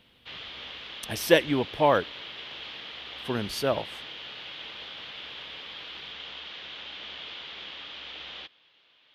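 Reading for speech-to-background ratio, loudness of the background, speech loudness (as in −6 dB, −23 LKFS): 13.0 dB, −39.0 LKFS, −26.0 LKFS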